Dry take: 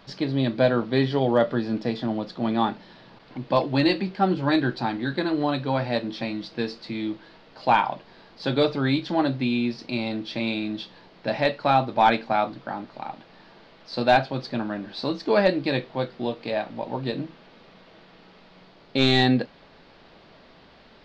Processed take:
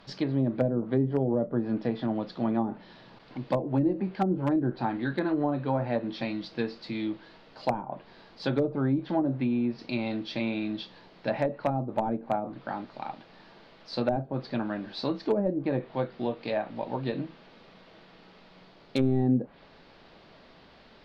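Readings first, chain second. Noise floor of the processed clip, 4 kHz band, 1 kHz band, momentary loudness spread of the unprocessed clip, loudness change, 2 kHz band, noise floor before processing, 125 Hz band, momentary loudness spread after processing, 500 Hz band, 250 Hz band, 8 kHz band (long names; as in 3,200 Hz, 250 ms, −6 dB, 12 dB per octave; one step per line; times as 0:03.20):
−55 dBFS, −12.5 dB, −9.5 dB, 13 LU, −5.0 dB, −11.0 dB, −52 dBFS, −2.5 dB, 10 LU, −5.0 dB, −3.0 dB, can't be measured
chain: treble cut that deepens with the level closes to 400 Hz, closed at −17 dBFS
wave folding −12.5 dBFS
level −2.5 dB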